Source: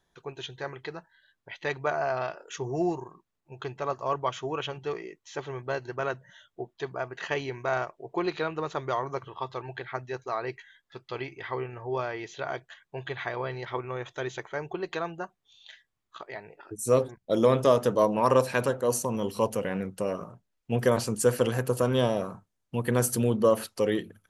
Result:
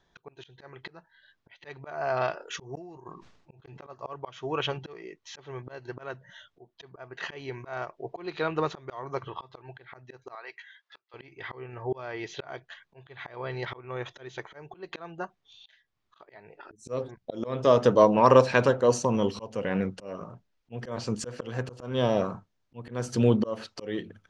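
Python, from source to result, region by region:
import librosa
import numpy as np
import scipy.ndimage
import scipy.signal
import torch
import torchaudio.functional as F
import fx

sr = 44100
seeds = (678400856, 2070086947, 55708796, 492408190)

y = fx.chain(x, sr, fx.gate_flip(shuts_db=-24.0, range_db=-37),
    fx.sustainer(db_per_s=63.0), at=(2.75, 3.87))
y = fx.chain(y, sr, fx.highpass(hz=890.0, slope=12),
    fx.high_shelf(hz=6000.0, db=-5.5), at=(10.35, 11.14))
y = fx.auto_swell(y, sr, attack_ms=400.0)
y = scipy.signal.sosfilt(scipy.signal.butter(4, 5900.0, 'lowpass', fs=sr, output='sos'), y)
y = y * librosa.db_to_amplitude(4.5)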